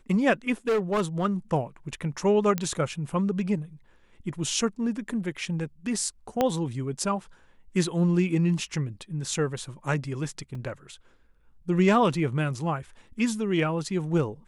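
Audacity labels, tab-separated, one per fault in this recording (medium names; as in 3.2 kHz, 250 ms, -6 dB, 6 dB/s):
0.680000	1.260000	clipped -20.5 dBFS
2.580000	2.580000	pop -13 dBFS
6.410000	6.410000	pop -10 dBFS
10.550000	10.550000	dropout 3.1 ms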